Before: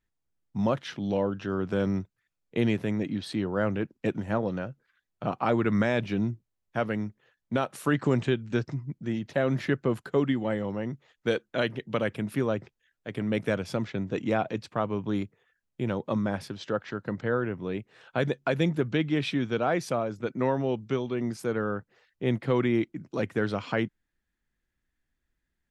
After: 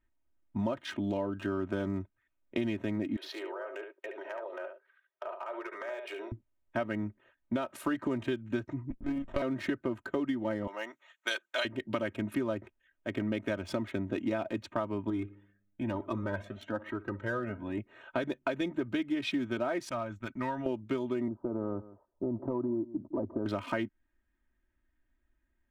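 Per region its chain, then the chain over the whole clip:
3.16–6.32 s: Chebyshev band-pass 390–5600 Hz, order 5 + compression 16:1, threshold -38 dBFS + delay 71 ms -6 dB
8.90–9.42 s: bass shelf 270 Hz -7.5 dB + monotone LPC vocoder at 8 kHz 140 Hz + sliding maximum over 17 samples
10.67–11.65 s: high-pass 590 Hz + tilt EQ +3.5 dB/octave
15.10–17.78 s: treble shelf 8.8 kHz -5.5 dB + filtered feedback delay 60 ms, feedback 58%, low-pass 2.9 kHz, level -19 dB + Shepard-style flanger rising 1.1 Hz
19.89–20.66 s: gate -46 dBFS, range -14 dB + peaking EQ 410 Hz -15 dB 1.9 oct
21.28–23.46 s: steep low-pass 1.1 kHz 48 dB/octave + compression 3:1, threshold -29 dBFS + delay 160 ms -19.5 dB
whole clip: local Wiener filter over 9 samples; comb 3.2 ms, depth 85%; compression, threshold -30 dBFS; trim +1 dB

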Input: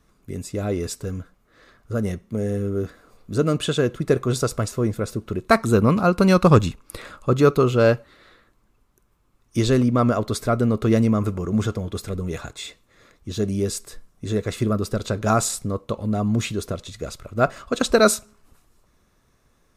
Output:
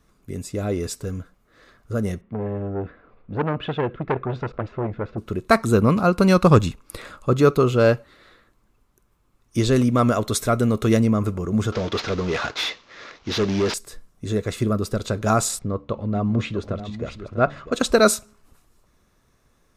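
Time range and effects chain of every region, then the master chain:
2.21–5.18 s: low-pass 2.7 kHz 24 dB/octave + transformer saturation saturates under 1.1 kHz
9.76–10.97 s: treble shelf 2.4 kHz +8 dB + band-stop 4.7 kHz, Q 7.8
11.72–13.74 s: CVSD coder 32 kbps + overdrive pedal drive 21 dB, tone 4.5 kHz, clips at -13 dBFS
15.59–17.72 s: low-pass 3.1 kHz + de-hum 72.5 Hz, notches 4 + delay 647 ms -11.5 dB
whole clip: none

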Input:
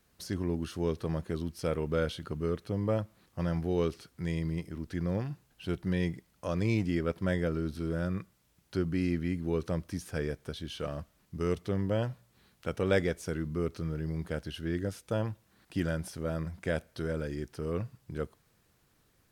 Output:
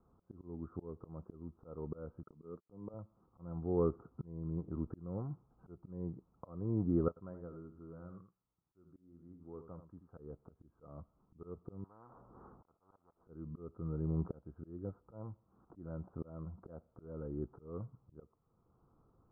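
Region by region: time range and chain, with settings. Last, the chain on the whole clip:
2.23–2.94 s: high-pass 140 Hz + gate -44 dBFS, range -35 dB
7.08–10.18 s: pre-emphasis filter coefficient 0.9 + delay 81 ms -9.5 dB
11.84–13.24 s: slow attack 394 ms + spectrum-flattening compressor 10:1
whole clip: slow attack 654 ms; Chebyshev low-pass 1.3 kHz, order 6; band-stop 600 Hz, Q 12; trim +1.5 dB

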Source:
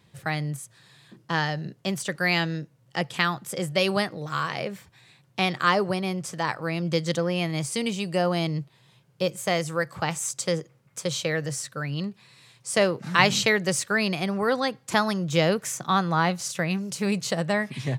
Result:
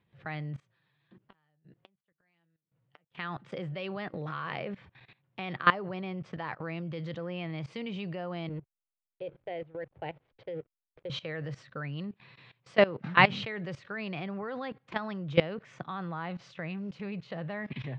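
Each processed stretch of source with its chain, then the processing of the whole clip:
0.60–3.15 s: inverted gate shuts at -24 dBFS, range -41 dB + flange 1.5 Hz, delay 4.8 ms, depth 2.1 ms, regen +60%
8.49–11.10 s: distance through air 380 m + static phaser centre 500 Hz, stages 4 + hysteresis with a dead band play -46.5 dBFS
whole clip: low-pass 3.2 kHz 24 dB/octave; level held to a coarse grid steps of 19 dB; trim +1.5 dB

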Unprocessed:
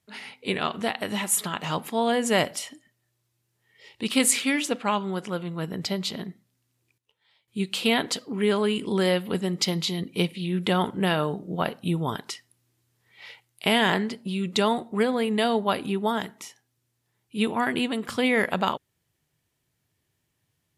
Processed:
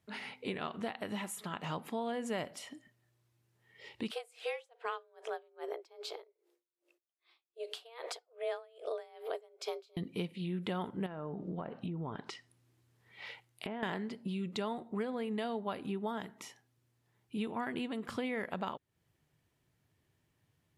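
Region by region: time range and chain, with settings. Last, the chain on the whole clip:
4.11–9.97 s: frequency shift +230 Hz + logarithmic tremolo 2.5 Hz, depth 33 dB
11.06–13.83 s: low-pass that closes with the level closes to 1.5 kHz, closed at -22 dBFS + compression 4:1, threshold -31 dBFS
whole clip: compression 3:1, threshold -39 dBFS; treble shelf 3.2 kHz -9 dB; trim +1 dB

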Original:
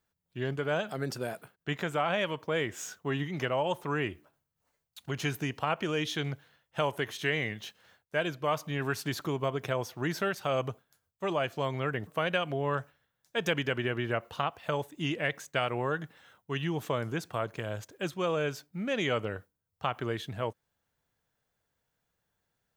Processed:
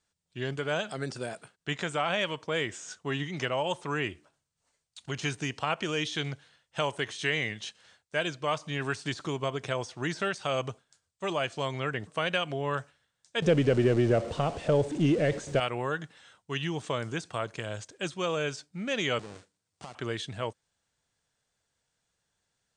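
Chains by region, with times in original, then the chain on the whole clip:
13.42–15.60 s: jump at every zero crossing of -35.5 dBFS + resonant low shelf 720 Hz +7.5 dB, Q 1.5
19.19–19.95 s: square wave that keeps the level + high-pass 130 Hz + compression 4:1, threshold -39 dBFS
whole clip: treble shelf 3.6 kHz +11.5 dB; de-esser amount 75%; elliptic low-pass 8.8 kHz, stop band 40 dB

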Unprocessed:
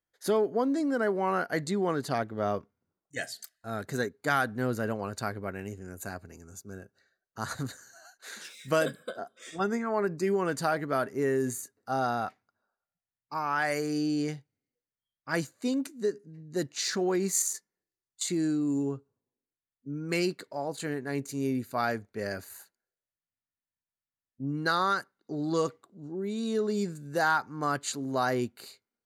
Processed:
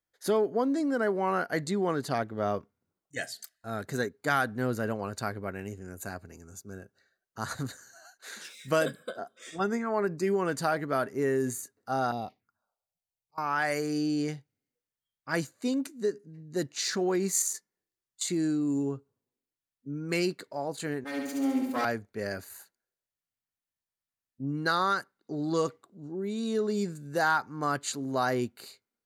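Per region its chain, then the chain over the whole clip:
12.11–13.38 s: dynamic bell 1.8 kHz, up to -4 dB, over -49 dBFS, Q 1.4 + slow attack 513 ms + touch-sensitive phaser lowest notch 250 Hz, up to 1.5 kHz, full sweep at -34.5 dBFS
21.04–21.85 s: comb filter that takes the minimum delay 3.8 ms + Chebyshev high-pass 250 Hz + flutter echo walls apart 11.9 m, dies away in 1.1 s
whole clip: none

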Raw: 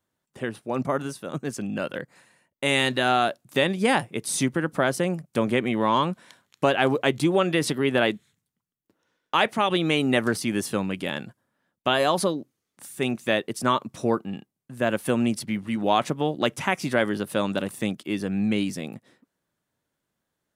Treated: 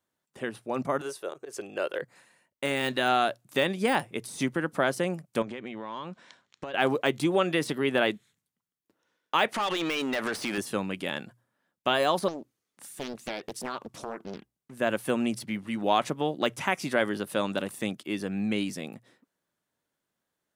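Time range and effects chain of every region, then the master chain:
1.01–2.02 s: slow attack 124 ms + resonant low shelf 300 Hz -9 dB, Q 3
5.42–6.74 s: compression 16:1, threshold -29 dBFS + low-pass 6.9 kHz 24 dB/octave
9.54–10.58 s: compression 20:1, threshold -25 dBFS + overdrive pedal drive 20 dB, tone 5.8 kHz, clips at -17.5 dBFS
12.28–14.74 s: compression, threshold -27 dBFS + loudspeaker Doppler distortion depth 0.97 ms
whole clip: hum notches 60/120 Hz; de-esser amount 60%; bass shelf 190 Hz -7 dB; trim -2 dB

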